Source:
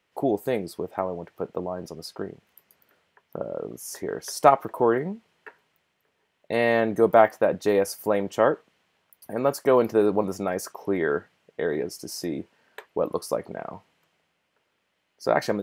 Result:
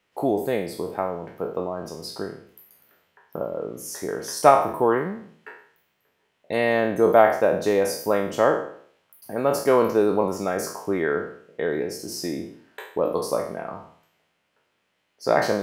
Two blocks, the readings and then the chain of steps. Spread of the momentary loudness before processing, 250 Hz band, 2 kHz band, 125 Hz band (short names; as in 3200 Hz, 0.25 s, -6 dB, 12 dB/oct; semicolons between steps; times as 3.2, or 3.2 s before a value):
16 LU, +1.0 dB, +2.0 dB, +1.0 dB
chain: spectral trails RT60 0.57 s